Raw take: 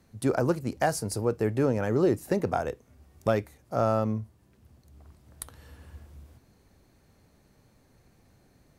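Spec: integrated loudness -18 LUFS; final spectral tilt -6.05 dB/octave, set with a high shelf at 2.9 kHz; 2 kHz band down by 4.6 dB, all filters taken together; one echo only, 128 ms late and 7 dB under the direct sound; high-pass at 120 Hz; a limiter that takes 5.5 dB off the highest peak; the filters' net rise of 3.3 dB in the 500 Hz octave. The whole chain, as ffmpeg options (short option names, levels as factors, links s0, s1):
-af "highpass=120,equalizer=f=500:t=o:g=4.5,equalizer=f=2000:t=o:g=-5.5,highshelf=f=2900:g=-3.5,alimiter=limit=0.158:level=0:latency=1,aecho=1:1:128:0.447,volume=2.99"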